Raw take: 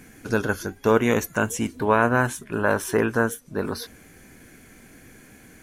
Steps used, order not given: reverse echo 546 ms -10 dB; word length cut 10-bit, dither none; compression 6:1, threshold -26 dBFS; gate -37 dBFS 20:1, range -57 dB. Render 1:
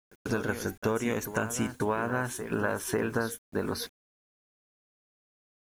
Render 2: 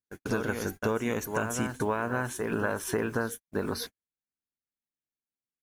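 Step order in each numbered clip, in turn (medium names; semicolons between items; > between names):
compression > reverse echo > gate > word length cut; reverse echo > compression > word length cut > gate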